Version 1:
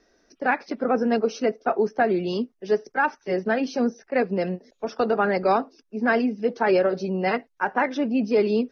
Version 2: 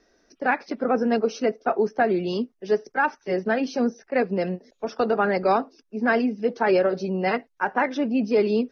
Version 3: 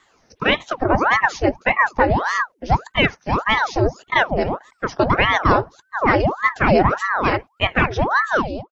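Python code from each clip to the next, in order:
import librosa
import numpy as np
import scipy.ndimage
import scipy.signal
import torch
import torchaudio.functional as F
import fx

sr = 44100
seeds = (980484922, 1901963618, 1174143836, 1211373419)

y1 = x
y2 = fx.fade_out_tail(y1, sr, length_s=0.56)
y2 = fx.ring_lfo(y2, sr, carrier_hz=840.0, swing_pct=85, hz=1.7)
y2 = y2 * librosa.db_to_amplitude(8.0)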